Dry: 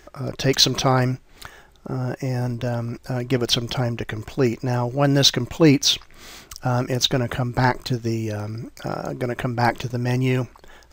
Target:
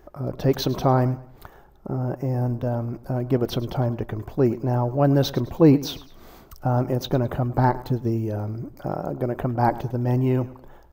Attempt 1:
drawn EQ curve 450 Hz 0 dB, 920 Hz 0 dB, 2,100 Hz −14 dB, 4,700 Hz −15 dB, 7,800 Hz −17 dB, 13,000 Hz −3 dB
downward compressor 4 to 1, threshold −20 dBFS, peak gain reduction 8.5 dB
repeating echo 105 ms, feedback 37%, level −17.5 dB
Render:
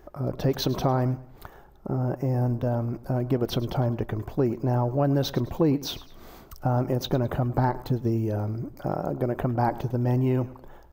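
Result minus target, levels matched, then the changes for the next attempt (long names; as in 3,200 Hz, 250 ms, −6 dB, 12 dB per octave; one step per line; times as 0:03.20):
downward compressor: peak gain reduction +8.5 dB
remove: downward compressor 4 to 1, threshold −20 dBFS, peak gain reduction 8.5 dB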